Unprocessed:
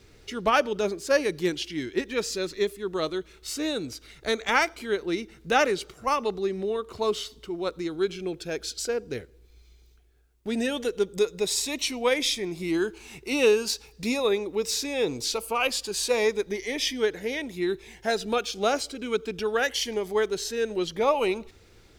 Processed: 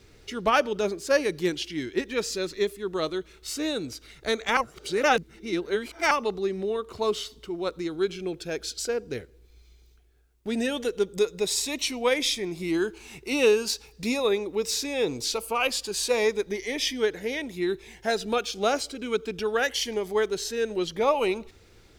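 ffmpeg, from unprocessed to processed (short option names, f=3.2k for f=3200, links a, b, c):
-filter_complex "[0:a]asplit=3[a][b][c];[a]atrim=end=4.572[d];[b]atrim=start=4.568:end=6.112,asetpts=PTS-STARTPTS,areverse[e];[c]atrim=start=6.108[f];[d][e]acrossfade=d=0.004:c1=hsin:c2=hsin[g];[g][f]acrossfade=d=0.004:c1=hsin:c2=hsin"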